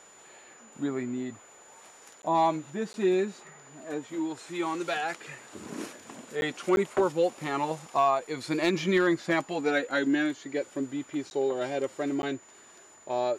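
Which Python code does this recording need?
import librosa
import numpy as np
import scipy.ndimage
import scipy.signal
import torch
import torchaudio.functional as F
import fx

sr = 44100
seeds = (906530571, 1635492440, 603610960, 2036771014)

y = fx.fix_declip(x, sr, threshold_db=-16.0)
y = fx.notch(y, sr, hz=7000.0, q=30.0)
y = fx.fix_interpolate(y, sr, at_s=(2.22, 2.93, 6.41, 6.76, 11.3, 12.22), length_ms=11.0)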